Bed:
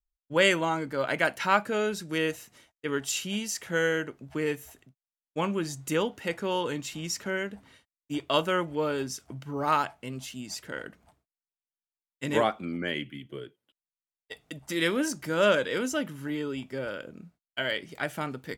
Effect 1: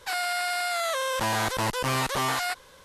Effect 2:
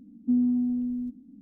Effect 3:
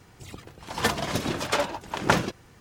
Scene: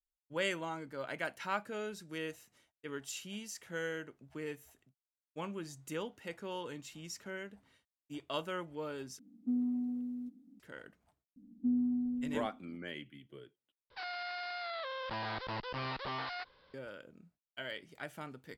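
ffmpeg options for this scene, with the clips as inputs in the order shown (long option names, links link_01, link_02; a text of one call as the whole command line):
ffmpeg -i bed.wav -i cue0.wav -i cue1.wav -filter_complex "[2:a]asplit=2[link_01][link_02];[0:a]volume=-12.5dB[link_03];[link_01]highpass=frequency=480:poles=1[link_04];[1:a]aresample=11025,aresample=44100[link_05];[link_03]asplit=3[link_06][link_07][link_08];[link_06]atrim=end=9.194[link_09];[link_04]atrim=end=1.41,asetpts=PTS-STARTPTS,volume=-3dB[link_10];[link_07]atrim=start=10.596:end=13.904[link_11];[link_05]atrim=end=2.84,asetpts=PTS-STARTPTS,volume=-12.5dB[link_12];[link_08]atrim=start=16.736[link_13];[link_02]atrim=end=1.41,asetpts=PTS-STARTPTS,volume=-8dB,afade=type=in:duration=0.004:curve=hsin,afade=type=out:start_time=1.406:duration=0.004:curve=hsin,adelay=11360[link_14];[link_09][link_10]acrossfade=duration=0.004:curve1=hsin:curve2=hsin[link_15];[link_15][link_11]acrossfade=duration=0.004:curve1=hsin:curve2=hsin[link_16];[link_16][link_12]acrossfade=duration=0.004:curve1=hsin:curve2=hsin[link_17];[link_17][link_13]acrossfade=duration=0.004:curve1=hsin:curve2=hsin[link_18];[link_18][link_14]amix=inputs=2:normalize=0" out.wav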